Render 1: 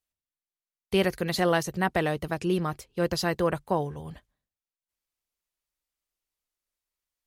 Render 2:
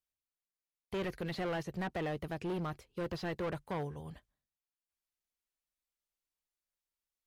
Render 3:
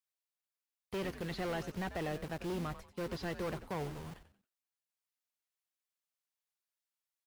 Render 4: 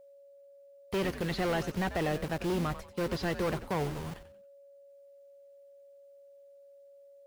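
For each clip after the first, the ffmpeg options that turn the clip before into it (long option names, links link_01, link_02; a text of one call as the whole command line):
ffmpeg -i in.wav -filter_complex "[0:a]asoftclip=type=hard:threshold=-26.5dB,acrossover=split=3700[link_01][link_02];[link_02]acompressor=threshold=-53dB:ratio=4:attack=1:release=60[link_03];[link_01][link_03]amix=inputs=2:normalize=0,volume=-6.5dB" out.wav
ffmpeg -i in.wav -filter_complex "[0:a]acrossover=split=490|4500[link_01][link_02][link_03];[link_01]acrusher=bits=7:mix=0:aa=0.000001[link_04];[link_04][link_02][link_03]amix=inputs=3:normalize=0,asplit=4[link_05][link_06][link_07][link_08];[link_06]adelay=92,afreqshift=-120,volume=-12dB[link_09];[link_07]adelay=184,afreqshift=-240,volume=-21.9dB[link_10];[link_08]adelay=276,afreqshift=-360,volume=-31.8dB[link_11];[link_05][link_09][link_10][link_11]amix=inputs=4:normalize=0,volume=-1.5dB" out.wav
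ffmpeg -i in.wav -af "aeval=exprs='val(0)+0.001*sin(2*PI*560*n/s)':channel_layout=same,volume=7dB" out.wav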